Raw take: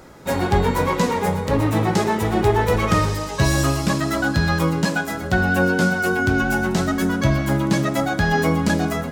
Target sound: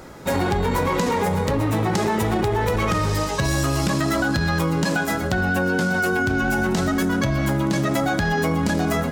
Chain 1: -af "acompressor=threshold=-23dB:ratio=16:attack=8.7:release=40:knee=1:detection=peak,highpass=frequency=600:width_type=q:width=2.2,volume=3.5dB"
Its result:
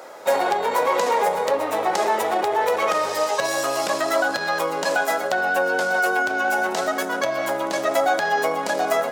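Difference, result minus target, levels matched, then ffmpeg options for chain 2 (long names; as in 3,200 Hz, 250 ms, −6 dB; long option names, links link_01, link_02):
500 Hz band +3.0 dB
-af "acompressor=threshold=-23dB:ratio=16:attack=8.7:release=40:knee=1:detection=peak,volume=3.5dB"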